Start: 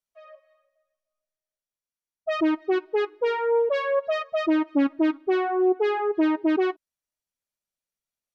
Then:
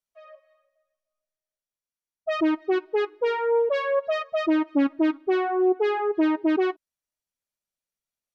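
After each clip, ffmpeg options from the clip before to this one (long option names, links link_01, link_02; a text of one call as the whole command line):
ffmpeg -i in.wav -af anull out.wav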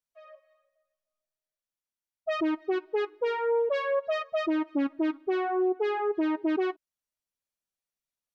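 ffmpeg -i in.wav -af "alimiter=limit=-17.5dB:level=0:latency=1:release=177,volume=-3dB" out.wav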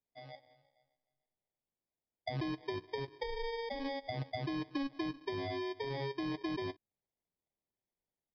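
ffmpeg -i in.wav -filter_complex "[0:a]acompressor=threshold=-28dB:ratio=6,aresample=11025,acrusher=samples=8:mix=1:aa=0.000001,aresample=44100,acrossover=split=220[link_01][link_02];[link_02]acompressor=threshold=-37dB:ratio=6[link_03];[link_01][link_03]amix=inputs=2:normalize=0" out.wav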